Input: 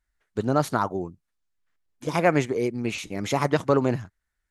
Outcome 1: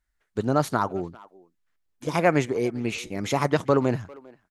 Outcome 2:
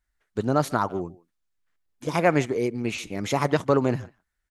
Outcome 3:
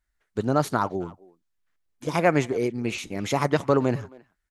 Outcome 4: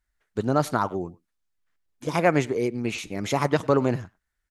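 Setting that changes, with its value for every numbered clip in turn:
speakerphone echo, time: 400 ms, 150 ms, 270 ms, 100 ms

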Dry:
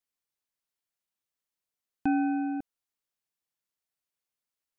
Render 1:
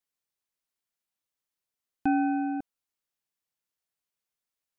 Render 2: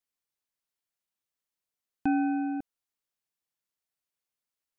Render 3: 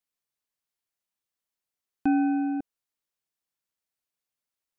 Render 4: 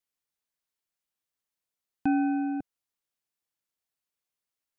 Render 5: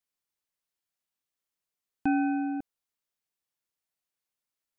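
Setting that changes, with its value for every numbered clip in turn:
dynamic bell, frequency: 910 Hz, 9.3 kHz, 350 Hz, 130 Hz, 2.3 kHz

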